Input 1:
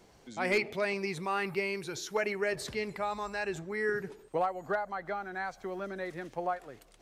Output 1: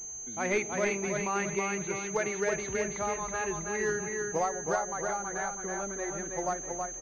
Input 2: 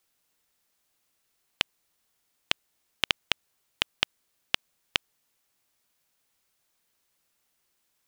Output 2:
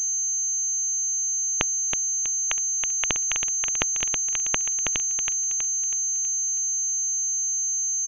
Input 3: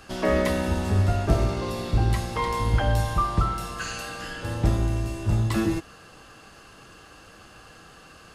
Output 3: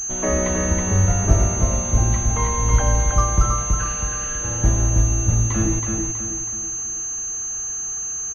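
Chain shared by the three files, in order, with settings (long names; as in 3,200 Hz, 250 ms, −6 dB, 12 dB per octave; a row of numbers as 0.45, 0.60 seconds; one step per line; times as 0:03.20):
low-shelf EQ 65 Hz +9.5 dB
repeating echo 323 ms, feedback 44%, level −4 dB
switching amplifier with a slow clock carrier 6,300 Hz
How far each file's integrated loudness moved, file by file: +2.5, +9.0, +5.0 LU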